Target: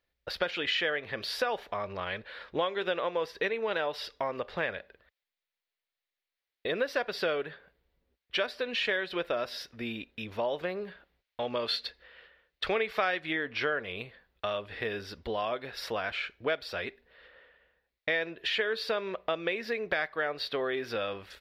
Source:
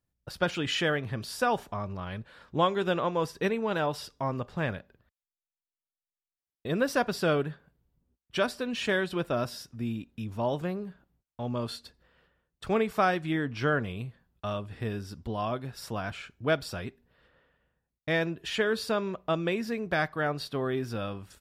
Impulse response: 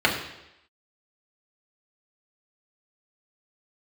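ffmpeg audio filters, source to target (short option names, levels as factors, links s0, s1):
-filter_complex "[0:a]equalizer=f=125:t=o:w=1:g=-12,equalizer=f=250:t=o:w=1:g=-4,equalizer=f=500:t=o:w=1:g=9,equalizer=f=2000:t=o:w=1:g=11,equalizer=f=4000:t=o:w=1:g=10,equalizer=f=8000:t=o:w=1:g=-11,acompressor=threshold=0.0316:ratio=3,asettb=1/sr,asplit=3[s0][s1][s2];[s0]atrim=end=10.884[s3];[s1]atrim=start=10.88:end=13.2,asetpts=PTS-STARTPTS,afade=t=in:d=0.004:c=qsin,afade=t=out:st=2.316:d=0.004:c=qsin,equalizer=f=3100:w=0.53:g=4[s4];[s2]atrim=start=13.196[s5];[s3][s4]acrossfade=d=0.004:c1=hsin:c2=qsin[s6];[s6][s5]acrossfade=d=0.004:c1=qsin:c2=hsin"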